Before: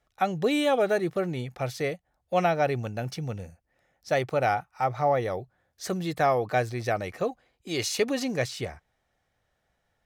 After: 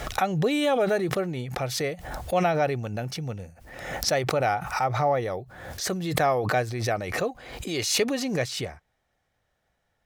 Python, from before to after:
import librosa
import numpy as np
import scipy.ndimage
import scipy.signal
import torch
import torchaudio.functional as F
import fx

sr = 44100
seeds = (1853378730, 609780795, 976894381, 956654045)

y = fx.pre_swell(x, sr, db_per_s=55.0)